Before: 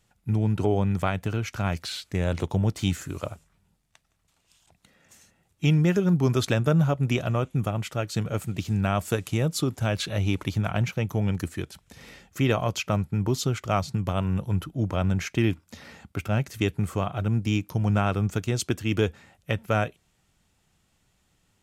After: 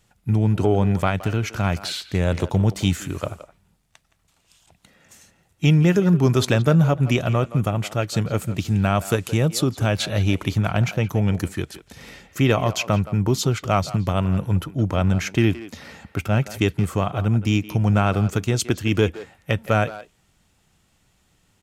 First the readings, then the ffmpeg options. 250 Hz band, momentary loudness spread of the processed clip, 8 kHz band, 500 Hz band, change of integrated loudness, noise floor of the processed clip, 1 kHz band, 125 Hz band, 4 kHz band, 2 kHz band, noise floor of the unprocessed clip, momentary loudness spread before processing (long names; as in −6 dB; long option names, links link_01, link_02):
+5.0 dB, 9 LU, +5.0 dB, +5.0 dB, +5.0 dB, −64 dBFS, +5.0 dB, +5.0 dB, +5.0 dB, +5.0 dB, −70 dBFS, 8 LU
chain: -filter_complex "[0:a]acontrast=29,asplit=2[link_01][link_02];[link_02]adelay=170,highpass=300,lowpass=3400,asoftclip=type=hard:threshold=-15dB,volume=-13dB[link_03];[link_01][link_03]amix=inputs=2:normalize=0"